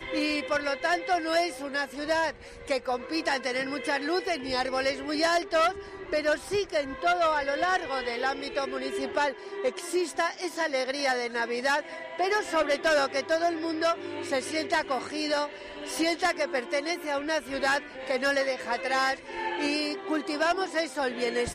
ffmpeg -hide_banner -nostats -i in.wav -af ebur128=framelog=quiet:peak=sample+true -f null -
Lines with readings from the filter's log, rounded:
Integrated loudness:
  I:         -28.2 LUFS
  Threshold: -38.2 LUFS
Loudness range:
  LRA:         2.2 LU
  Threshold: -48.2 LUFS
  LRA low:   -29.3 LUFS
  LRA high:  -27.1 LUFS
Sample peak:
  Peak:      -15.7 dBFS
True peak:
  Peak:      -15.5 dBFS